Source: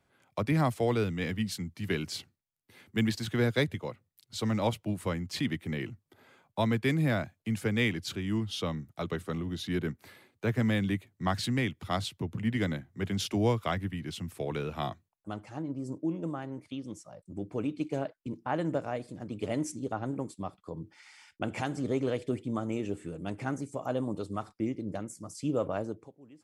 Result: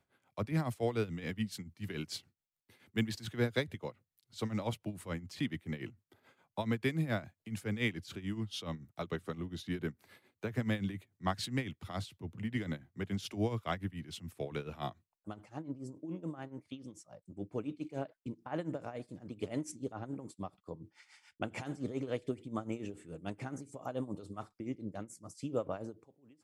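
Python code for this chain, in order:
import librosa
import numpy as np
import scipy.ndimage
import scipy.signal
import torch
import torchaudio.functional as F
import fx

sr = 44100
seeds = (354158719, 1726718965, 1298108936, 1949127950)

y = x * (1.0 - 0.78 / 2.0 + 0.78 / 2.0 * np.cos(2.0 * np.pi * 7.0 * (np.arange(len(x)) / sr)))
y = F.gain(torch.from_numpy(y), -3.0).numpy()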